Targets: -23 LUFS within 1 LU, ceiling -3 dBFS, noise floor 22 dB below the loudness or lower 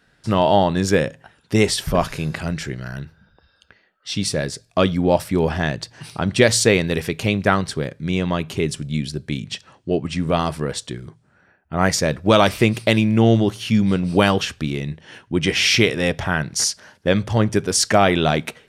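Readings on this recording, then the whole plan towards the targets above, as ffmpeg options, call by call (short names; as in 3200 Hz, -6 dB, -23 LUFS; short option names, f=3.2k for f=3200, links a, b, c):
loudness -19.5 LUFS; peak -1.0 dBFS; loudness target -23.0 LUFS
-> -af "volume=-3.5dB"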